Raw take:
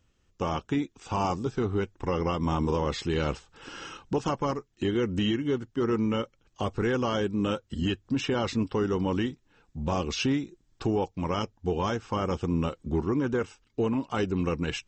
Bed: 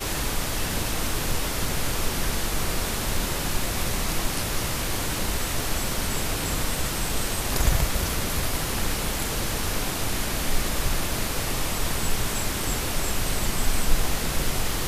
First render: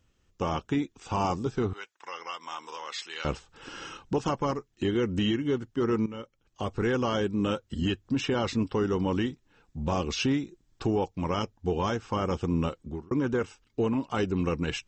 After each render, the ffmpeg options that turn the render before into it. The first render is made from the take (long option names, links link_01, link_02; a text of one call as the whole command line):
ffmpeg -i in.wav -filter_complex "[0:a]asettb=1/sr,asplit=3[link_01][link_02][link_03];[link_01]atrim=end=1.734[link_04];[link_02]atrim=start=1.73:end=3.25,asetpts=PTS-STARTPTS,afade=type=in:duration=0.004:curve=qsin,afade=type=out:start_time=1.516:duration=0.004:curve=qsin,highpass=1300[link_05];[link_03]atrim=start=3.246[link_06];[link_04][link_05]acrossfade=duration=0.004:curve1=hsin:curve2=qsin[link_07];[link_07][link_06]acrossfade=duration=0.004:curve1=qsin:curve2=hsin,asplit=3[link_08][link_09][link_10];[link_08]atrim=end=6.06,asetpts=PTS-STARTPTS,afade=type=out:start_time=6.056:duration=0.004:curve=hsin:silence=0.188365[link_11];[link_09]atrim=start=6.06:end=13.11,asetpts=PTS-STARTPTS,afade=type=in:duration=0.81:silence=0.188365,afade=type=out:start_time=6.62:duration=0.43[link_12];[link_10]atrim=start=13.11,asetpts=PTS-STARTPTS,afade=type=in:duration=0.004:curve=hsin[link_13];[link_11][link_12][link_13]concat=n=3:v=0:a=1" out.wav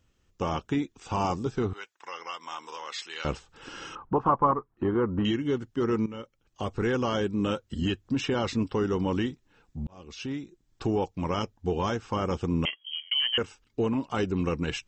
ffmpeg -i in.wav -filter_complex "[0:a]asettb=1/sr,asplit=3[link_01][link_02][link_03];[link_01]atrim=end=3.954[link_04];[link_02]atrim=start=3.95:end=5.25,asetpts=PTS-STARTPTS,afade=type=in:duration=0.004:curve=qsin,afade=type=out:start_time=1.296:duration=0.004:curve=qsin,lowpass=frequency=1100:width_type=q:width=3.6[link_05];[link_03]atrim=start=5.246[link_06];[link_04][link_05]acrossfade=duration=0.004:curve1=hsin:curve2=qsin[link_07];[link_07][link_06]acrossfade=duration=0.004:curve1=qsin:curve2=hsin,asettb=1/sr,asplit=3[link_08][link_09][link_10];[link_08]atrim=end=12.654[link_11];[link_09]atrim=start=12.65:end=13.38,asetpts=PTS-STARTPTS,afade=type=in:duration=0.004:curve=qsin,afade=type=out:start_time=0.726:duration=0.004:curve=qsin,lowpass=frequency=2800:width_type=q:width=0.5098,lowpass=frequency=2800:width_type=q:width=0.6013,lowpass=frequency=2800:width_type=q:width=0.9,lowpass=frequency=2800:width_type=q:width=2.563,afreqshift=-3300[link_12];[link_10]atrim=start=13.376[link_13];[link_11][link_12]acrossfade=duration=0.004:curve1=hsin:curve2=qsin[link_14];[link_14][link_13]acrossfade=duration=0.004:curve1=qsin:curve2=hsin,asplit=2[link_15][link_16];[link_15]atrim=end=9.87,asetpts=PTS-STARTPTS,afade=type=out:start_time=9.866:duration=0.004:curve=hsin[link_17];[link_16]atrim=start=9.87,asetpts=PTS-STARTPTS,afade=type=in:duration=1.07[link_18];[link_17][link_18]concat=n=2:v=0:a=1" out.wav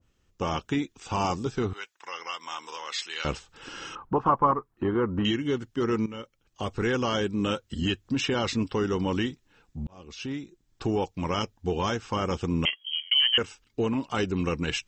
ffmpeg -i in.wav -af "adynamicequalizer=threshold=0.00708:dfrequency=1500:dqfactor=0.7:tfrequency=1500:tqfactor=0.7:attack=5:release=100:ratio=0.375:range=2.5:mode=boostabove:tftype=highshelf" out.wav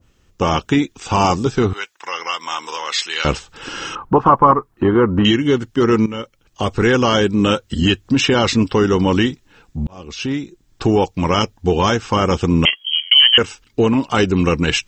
ffmpeg -i in.wav -af "volume=12dB,alimiter=limit=-1dB:level=0:latency=1" out.wav